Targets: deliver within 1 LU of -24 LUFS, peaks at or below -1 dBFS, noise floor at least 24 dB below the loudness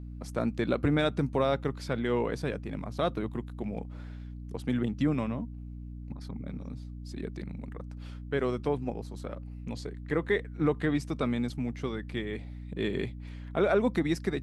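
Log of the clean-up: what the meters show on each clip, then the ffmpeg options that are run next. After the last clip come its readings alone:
hum 60 Hz; highest harmonic 300 Hz; hum level -38 dBFS; loudness -32.0 LUFS; peak level -13.5 dBFS; loudness target -24.0 LUFS
-> -af "bandreject=f=60:t=h:w=4,bandreject=f=120:t=h:w=4,bandreject=f=180:t=h:w=4,bandreject=f=240:t=h:w=4,bandreject=f=300:t=h:w=4"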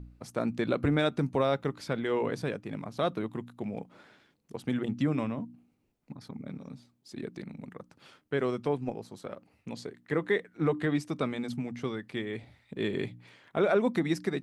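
hum not found; loudness -32.0 LUFS; peak level -14.5 dBFS; loudness target -24.0 LUFS
-> -af "volume=2.51"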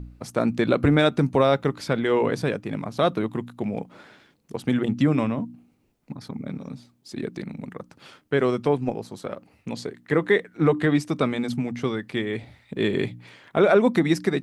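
loudness -24.0 LUFS; peak level -6.5 dBFS; noise floor -64 dBFS

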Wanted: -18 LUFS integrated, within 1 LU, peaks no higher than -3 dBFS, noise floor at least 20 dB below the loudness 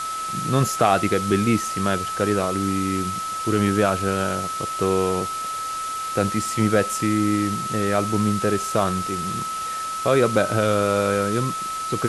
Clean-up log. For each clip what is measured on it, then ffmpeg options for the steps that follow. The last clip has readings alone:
steady tone 1.3 kHz; tone level -26 dBFS; noise floor -28 dBFS; noise floor target -42 dBFS; loudness -22.0 LUFS; peak level -5.0 dBFS; loudness target -18.0 LUFS
-> -af "bandreject=f=1300:w=30"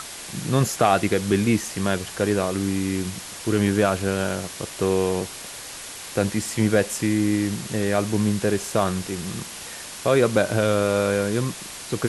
steady tone not found; noise floor -37 dBFS; noise floor target -43 dBFS
-> -af "afftdn=nr=6:nf=-37"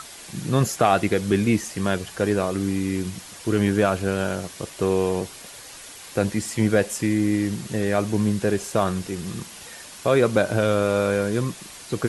noise floor -42 dBFS; noise floor target -44 dBFS
-> -af "afftdn=nr=6:nf=-42"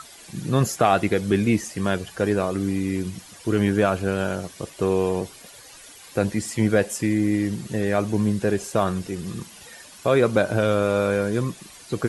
noise floor -46 dBFS; loudness -23.5 LUFS; peak level -5.5 dBFS; loudness target -18.0 LUFS
-> -af "volume=1.88,alimiter=limit=0.708:level=0:latency=1"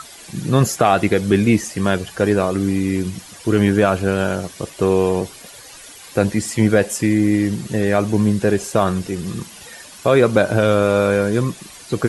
loudness -18.0 LUFS; peak level -3.0 dBFS; noise floor -40 dBFS

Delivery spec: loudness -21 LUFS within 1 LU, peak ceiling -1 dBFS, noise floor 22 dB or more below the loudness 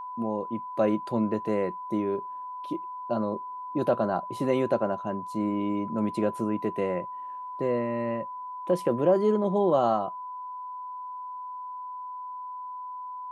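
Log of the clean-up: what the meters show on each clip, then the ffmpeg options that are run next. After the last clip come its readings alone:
steady tone 1 kHz; tone level -35 dBFS; loudness -29.5 LUFS; peak level -12.0 dBFS; loudness target -21.0 LUFS
-> -af "bandreject=f=1000:w=30"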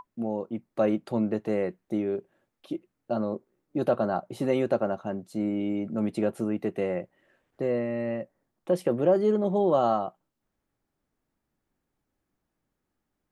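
steady tone not found; loudness -28.5 LUFS; peak level -12.0 dBFS; loudness target -21.0 LUFS
-> -af "volume=2.37"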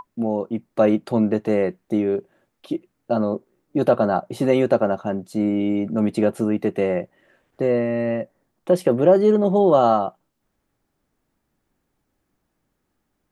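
loudness -21.0 LUFS; peak level -4.5 dBFS; noise floor -75 dBFS

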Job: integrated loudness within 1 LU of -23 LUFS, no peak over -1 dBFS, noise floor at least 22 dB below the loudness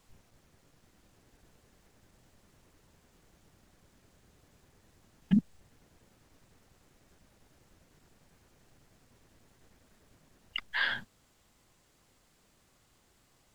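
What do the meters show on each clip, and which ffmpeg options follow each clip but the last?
loudness -32.0 LUFS; peak level -14.5 dBFS; loudness target -23.0 LUFS
-> -af "volume=2.82"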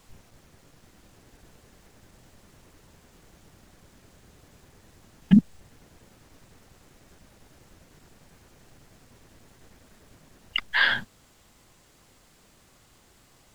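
loudness -23.0 LUFS; peak level -5.5 dBFS; noise floor -59 dBFS

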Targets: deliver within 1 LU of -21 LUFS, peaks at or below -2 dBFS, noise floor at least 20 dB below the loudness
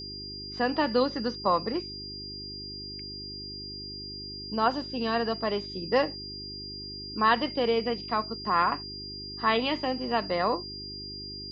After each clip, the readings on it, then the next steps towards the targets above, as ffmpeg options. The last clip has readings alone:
hum 50 Hz; highest harmonic 400 Hz; hum level -43 dBFS; steady tone 4.8 kHz; tone level -38 dBFS; loudness -29.5 LUFS; peak level -10.5 dBFS; loudness target -21.0 LUFS
-> -af "bandreject=f=50:t=h:w=4,bandreject=f=100:t=h:w=4,bandreject=f=150:t=h:w=4,bandreject=f=200:t=h:w=4,bandreject=f=250:t=h:w=4,bandreject=f=300:t=h:w=4,bandreject=f=350:t=h:w=4,bandreject=f=400:t=h:w=4"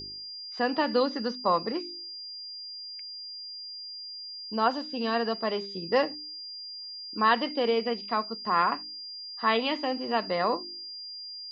hum not found; steady tone 4.8 kHz; tone level -38 dBFS
-> -af "bandreject=f=4800:w=30"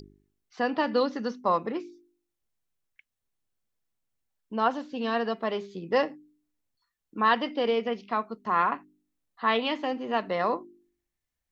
steady tone not found; loudness -28.5 LUFS; peak level -11.0 dBFS; loudness target -21.0 LUFS
-> -af "volume=2.37"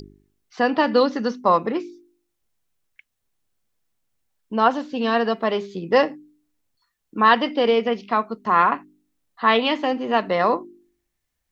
loudness -21.0 LUFS; peak level -3.5 dBFS; noise floor -77 dBFS

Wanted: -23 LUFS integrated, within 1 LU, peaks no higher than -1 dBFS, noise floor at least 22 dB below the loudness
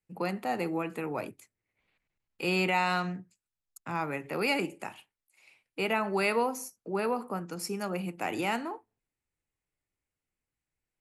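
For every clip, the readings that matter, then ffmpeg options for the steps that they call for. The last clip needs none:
loudness -31.5 LUFS; peak level -14.5 dBFS; loudness target -23.0 LUFS
-> -af "volume=2.66"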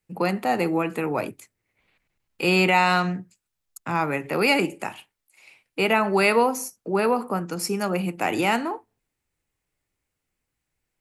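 loudness -23.0 LUFS; peak level -6.0 dBFS; noise floor -82 dBFS

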